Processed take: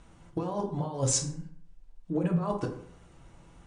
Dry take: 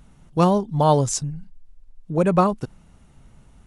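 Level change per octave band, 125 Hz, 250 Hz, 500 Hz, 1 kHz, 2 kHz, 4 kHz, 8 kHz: -9.0, -9.5, -12.5, -16.0, -10.5, -4.0, -1.5 dB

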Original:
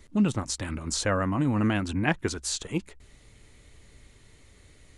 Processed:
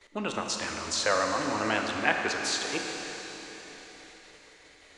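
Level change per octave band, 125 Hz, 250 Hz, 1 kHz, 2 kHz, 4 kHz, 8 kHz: -15.5, -8.5, +4.0, +4.5, +4.0, 0.0 dB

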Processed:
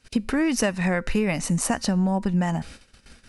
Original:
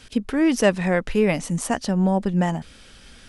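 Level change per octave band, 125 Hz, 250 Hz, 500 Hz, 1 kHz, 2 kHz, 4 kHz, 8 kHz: -1.0, -2.0, -6.0, -2.5, -1.0, 0.0, +3.0 dB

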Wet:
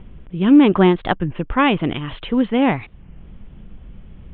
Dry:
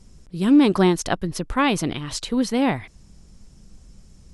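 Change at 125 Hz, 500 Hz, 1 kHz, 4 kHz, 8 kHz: +4.0 dB, +4.0 dB, +4.0 dB, +0.5 dB, under -40 dB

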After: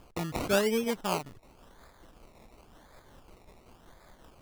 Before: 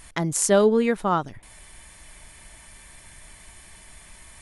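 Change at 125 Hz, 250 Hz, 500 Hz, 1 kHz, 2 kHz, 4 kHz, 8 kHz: -8.5, -9.0, -9.0, -8.5, -4.0, -1.5, -14.5 dB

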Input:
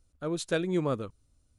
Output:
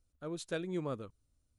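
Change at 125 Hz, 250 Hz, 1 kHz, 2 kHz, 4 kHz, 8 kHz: -8.5, -8.5, -8.5, -8.5, -8.5, -8.5 dB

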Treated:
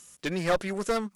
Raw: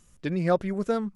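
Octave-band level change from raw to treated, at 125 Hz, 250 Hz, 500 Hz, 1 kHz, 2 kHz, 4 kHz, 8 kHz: -6.0 dB, -4.5 dB, -1.5 dB, 0.0 dB, +4.5 dB, +8.0 dB, n/a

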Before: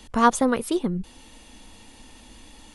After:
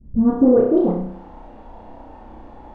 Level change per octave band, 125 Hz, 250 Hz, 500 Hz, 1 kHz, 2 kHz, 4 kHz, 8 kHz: +4.0 dB, +8.5 dB, +9.0 dB, -9.0 dB, under -15 dB, under -20 dB, under -40 dB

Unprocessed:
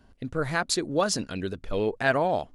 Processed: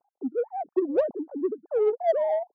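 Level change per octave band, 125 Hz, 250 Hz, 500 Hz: under -30 dB, -0.5 dB, +3.5 dB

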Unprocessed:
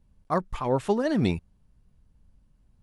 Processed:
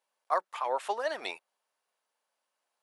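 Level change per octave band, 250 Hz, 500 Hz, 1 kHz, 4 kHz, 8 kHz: -26.5, -7.0, -0.5, -1.0, -2.5 dB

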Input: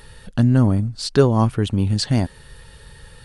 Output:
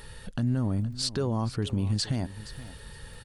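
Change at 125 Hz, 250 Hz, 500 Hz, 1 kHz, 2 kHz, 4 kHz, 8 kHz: -10.5, -11.0, -14.0, -12.5, -10.0, -5.0, -4.0 dB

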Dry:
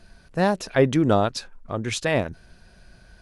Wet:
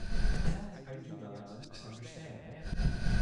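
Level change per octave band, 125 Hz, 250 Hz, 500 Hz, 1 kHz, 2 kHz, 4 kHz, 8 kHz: -8.5, -16.0, -24.0, -22.0, -14.5, -15.0, -16.5 dB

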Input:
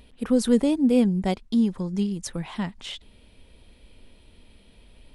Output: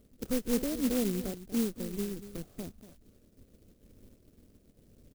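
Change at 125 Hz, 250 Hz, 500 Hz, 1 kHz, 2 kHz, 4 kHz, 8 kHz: -11.0, -11.0, -9.0, -13.0, -7.5, -8.5, -3.0 dB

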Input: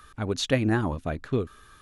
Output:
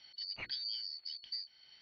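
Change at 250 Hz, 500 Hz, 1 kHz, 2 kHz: under -40 dB, under -35 dB, under -25 dB, -17.0 dB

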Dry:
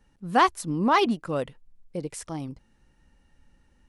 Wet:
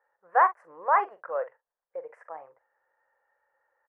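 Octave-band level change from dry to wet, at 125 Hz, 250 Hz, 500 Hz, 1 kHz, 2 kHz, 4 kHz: under -40 dB, under -25 dB, -3.5 dB, 0.0 dB, -2.0 dB, under -30 dB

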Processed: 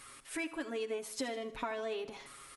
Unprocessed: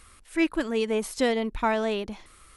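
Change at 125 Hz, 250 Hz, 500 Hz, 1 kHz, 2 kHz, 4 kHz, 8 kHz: n/a, -15.0 dB, -11.5 dB, -12.5 dB, -10.5 dB, -9.5 dB, -5.0 dB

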